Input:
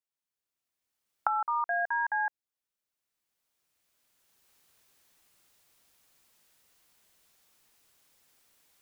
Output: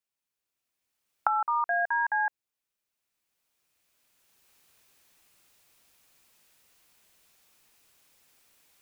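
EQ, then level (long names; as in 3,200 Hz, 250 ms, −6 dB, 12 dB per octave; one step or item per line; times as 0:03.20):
parametric band 2,500 Hz +3.5 dB 0.25 octaves
+2.5 dB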